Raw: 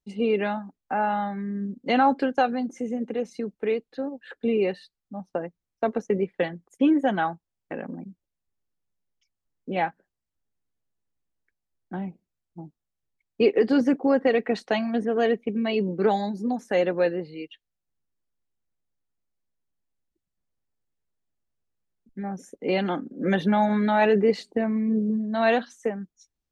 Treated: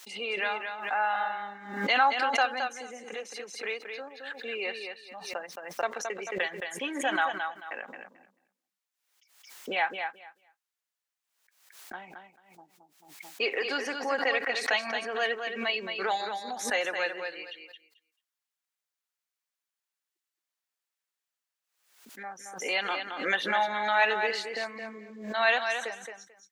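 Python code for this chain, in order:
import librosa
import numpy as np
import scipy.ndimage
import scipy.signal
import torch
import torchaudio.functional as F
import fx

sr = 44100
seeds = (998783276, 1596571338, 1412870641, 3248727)

p1 = scipy.signal.sosfilt(scipy.signal.butter(2, 1200.0, 'highpass', fs=sr, output='sos'), x)
p2 = p1 + fx.echo_feedback(p1, sr, ms=220, feedback_pct=16, wet_db=-6.5, dry=0)
p3 = fx.pre_swell(p2, sr, db_per_s=81.0)
y = p3 * librosa.db_to_amplitude(4.0)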